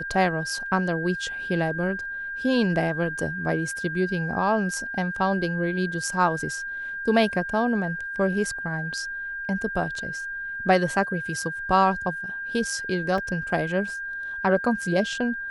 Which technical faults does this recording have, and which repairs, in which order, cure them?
whistle 1,600 Hz −30 dBFS
0:13.18: drop-out 2.7 ms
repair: notch filter 1,600 Hz, Q 30
repair the gap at 0:13.18, 2.7 ms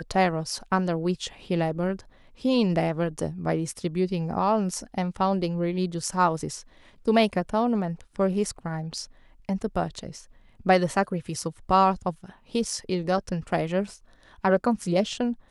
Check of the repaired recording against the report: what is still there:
none of them is left

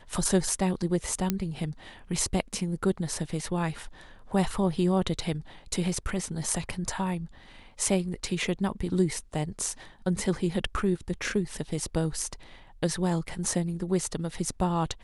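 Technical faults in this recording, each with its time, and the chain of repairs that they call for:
0:01.30: click −11 dBFS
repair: click removal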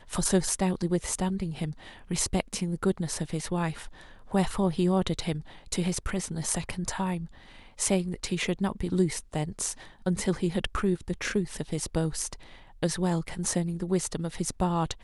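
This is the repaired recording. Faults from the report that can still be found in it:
0:01.30: click

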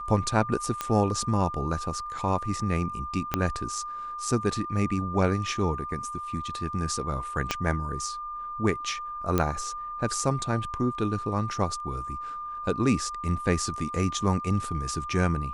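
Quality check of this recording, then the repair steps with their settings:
whistle 1,200 Hz −33 dBFS
0:00.81: click −13 dBFS
0:03.34: click −9 dBFS
0:07.51: click −10 dBFS
0:09.38: click −10 dBFS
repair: click removal
notch filter 1,200 Hz, Q 30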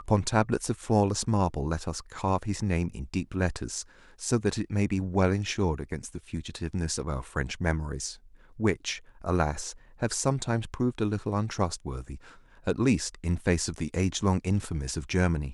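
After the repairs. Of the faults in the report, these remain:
0:03.34: click
0:07.51: click

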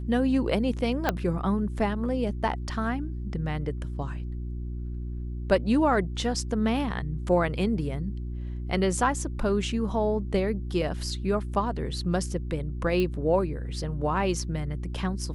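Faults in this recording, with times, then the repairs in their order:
mains hum 60 Hz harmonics 6 −33 dBFS
0:01.09: click −9 dBFS
0:13.00: click −17 dBFS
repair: click removal
hum removal 60 Hz, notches 6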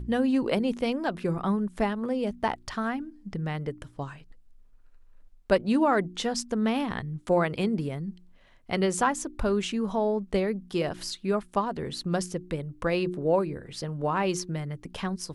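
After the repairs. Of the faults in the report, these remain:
0:01.09: click
0:13.00: click

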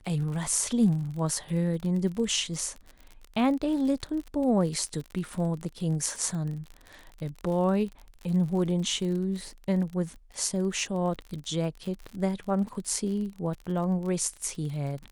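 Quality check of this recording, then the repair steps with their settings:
surface crackle 48 per second −35 dBFS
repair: click removal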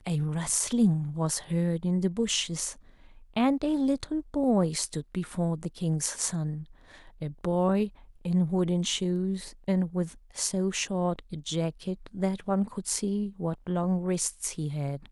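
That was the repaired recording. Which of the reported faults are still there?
none of them is left

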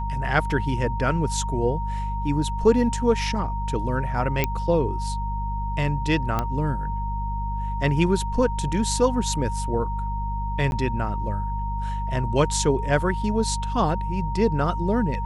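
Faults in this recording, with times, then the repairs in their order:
mains hum 50 Hz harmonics 4 −28 dBFS
whistle 930 Hz −30 dBFS
0:04.44: click −7 dBFS
0:06.39: click −11 dBFS
0:10.71–0:10.72: drop-out 11 ms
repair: click removal
notch filter 930 Hz, Q 30
hum removal 50 Hz, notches 4
repair the gap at 0:10.71, 11 ms

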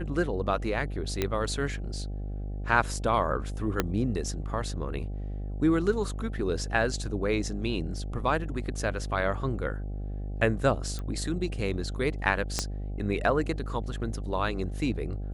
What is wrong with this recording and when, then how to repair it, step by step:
mains buzz 50 Hz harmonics 16 −34 dBFS
0:01.22: click −12 dBFS
0:03.80: click −9 dBFS
0:10.99: click −22 dBFS
0:12.59: click −12 dBFS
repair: click removal
hum removal 50 Hz, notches 16

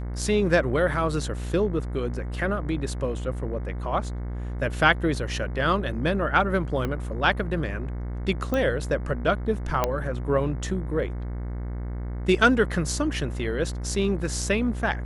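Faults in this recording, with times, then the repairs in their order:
mains buzz 60 Hz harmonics 37 −31 dBFS
0:06.85: click −16 dBFS
0:08.54: click −14 dBFS
0:09.84: click −8 dBFS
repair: click removal
hum removal 60 Hz, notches 37

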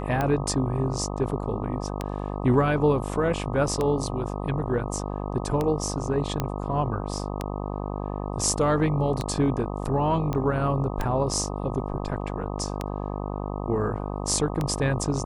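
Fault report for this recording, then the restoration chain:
mains buzz 50 Hz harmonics 25 −31 dBFS
scratch tick 33 1/3 rpm −13 dBFS
0:06.40: click −12 dBFS
0:10.33: click −16 dBFS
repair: click removal
hum removal 50 Hz, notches 25

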